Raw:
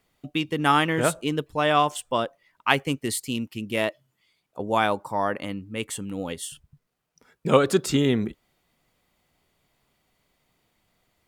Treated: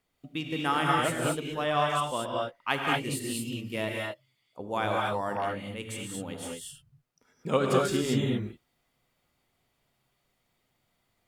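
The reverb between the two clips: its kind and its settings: non-linear reverb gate 0.26 s rising, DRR -2 dB; gain -8.5 dB

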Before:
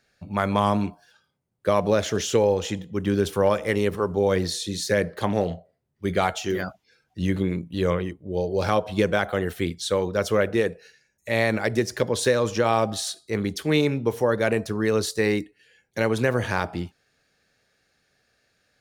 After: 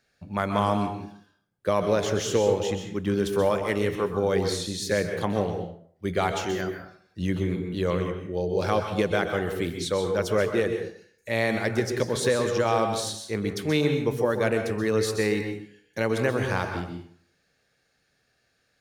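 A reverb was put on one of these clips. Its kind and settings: plate-style reverb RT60 0.56 s, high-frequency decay 0.7×, pre-delay 0.115 s, DRR 5.5 dB; gain -3 dB

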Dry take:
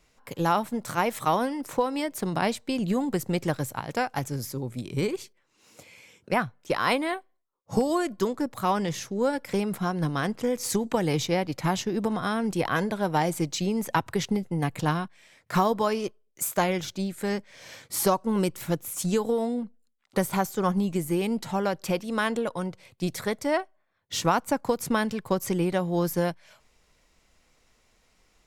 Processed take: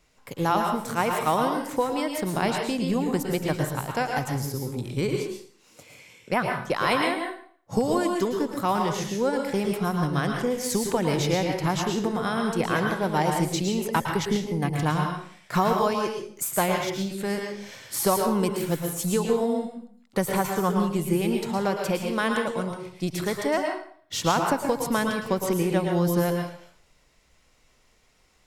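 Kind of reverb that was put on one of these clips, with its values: plate-style reverb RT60 0.52 s, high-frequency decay 0.9×, pre-delay 0.1 s, DRR 2 dB

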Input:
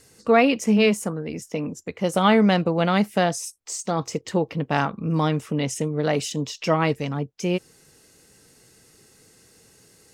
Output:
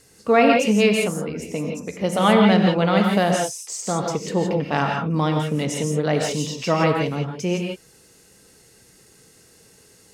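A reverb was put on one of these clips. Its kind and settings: non-linear reverb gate 0.19 s rising, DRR 1.5 dB

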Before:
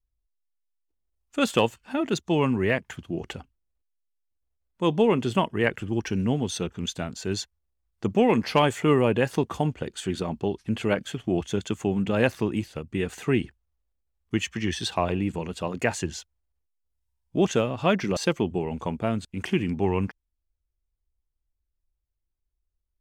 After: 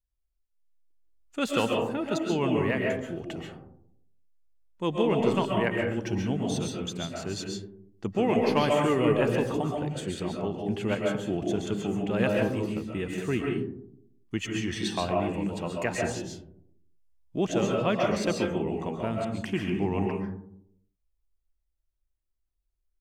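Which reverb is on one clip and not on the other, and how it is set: digital reverb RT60 0.71 s, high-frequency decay 0.3×, pre-delay 95 ms, DRR -0.5 dB; gain -5.5 dB

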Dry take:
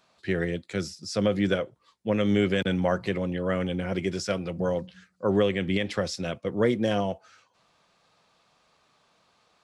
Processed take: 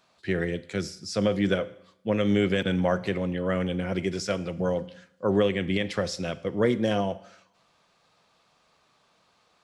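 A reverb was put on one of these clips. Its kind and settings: Schroeder reverb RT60 0.74 s, combs from 33 ms, DRR 16.5 dB

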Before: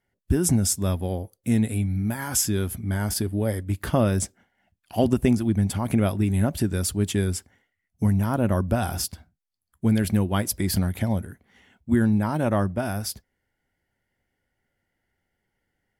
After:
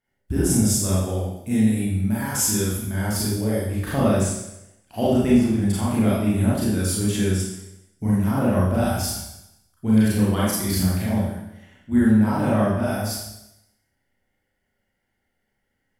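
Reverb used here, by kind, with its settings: Schroeder reverb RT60 0.86 s, combs from 29 ms, DRR -8 dB; gain -6 dB

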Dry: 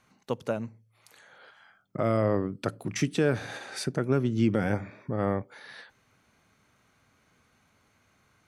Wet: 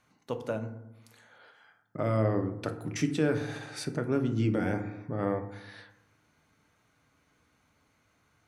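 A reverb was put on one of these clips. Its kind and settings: FDN reverb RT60 0.89 s, low-frequency decay 1.3×, high-frequency decay 0.4×, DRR 6 dB; gain -4 dB

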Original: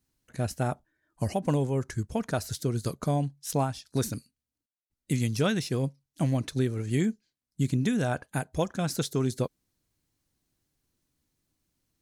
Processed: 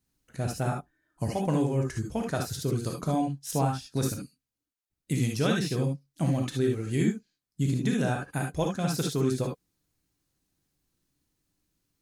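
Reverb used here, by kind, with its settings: non-linear reverb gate 90 ms rising, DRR 1 dB; gain -2 dB

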